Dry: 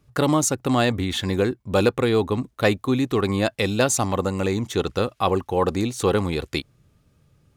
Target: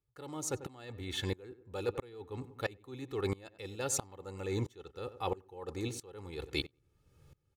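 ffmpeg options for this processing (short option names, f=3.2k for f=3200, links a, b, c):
-filter_complex "[0:a]aecho=1:1:2.3:0.55,areverse,acompressor=threshold=-29dB:ratio=6,areverse,asplit=2[a][b];[b]adelay=93,lowpass=f=1.8k:p=1,volume=-16dB,asplit=2[c][d];[d]adelay=93,lowpass=f=1.8k:p=1,volume=0.43,asplit=2[e][f];[f]adelay=93,lowpass=f=1.8k:p=1,volume=0.43,asplit=2[g][h];[h]adelay=93,lowpass=f=1.8k:p=1,volume=0.43[i];[a][c][e][g][i]amix=inputs=5:normalize=0,aeval=exprs='val(0)*pow(10,-25*if(lt(mod(-1.5*n/s,1),2*abs(-1.5)/1000),1-mod(-1.5*n/s,1)/(2*abs(-1.5)/1000),(mod(-1.5*n/s,1)-2*abs(-1.5)/1000)/(1-2*abs(-1.5)/1000))/20)':c=same,volume=1dB"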